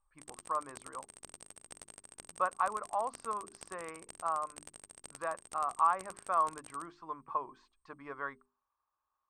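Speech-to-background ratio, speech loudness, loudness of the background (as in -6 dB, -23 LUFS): 15.5 dB, -36.0 LUFS, -51.5 LUFS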